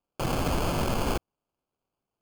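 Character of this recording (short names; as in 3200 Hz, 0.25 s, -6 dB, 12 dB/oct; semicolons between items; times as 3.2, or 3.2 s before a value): aliases and images of a low sample rate 1900 Hz, jitter 0%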